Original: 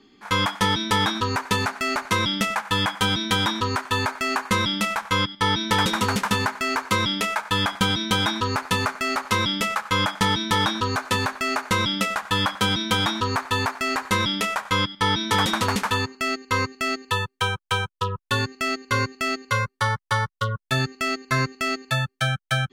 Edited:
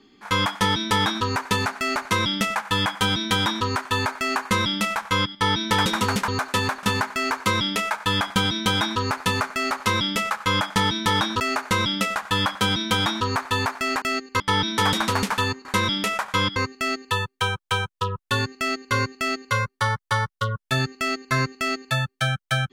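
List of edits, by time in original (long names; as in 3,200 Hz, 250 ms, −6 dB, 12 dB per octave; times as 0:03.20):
0:10.85–0:11.40: move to 0:06.28
0:14.02–0:14.93: swap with 0:16.18–0:16.56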